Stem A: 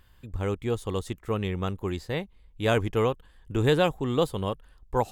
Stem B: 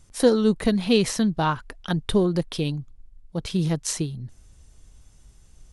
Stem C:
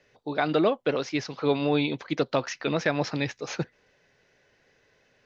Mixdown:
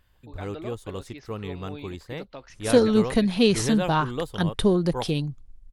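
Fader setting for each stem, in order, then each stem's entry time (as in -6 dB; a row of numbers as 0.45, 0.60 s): -5.5, 0.0, -16.0 dB; 0.00, 2.50, 0.00 s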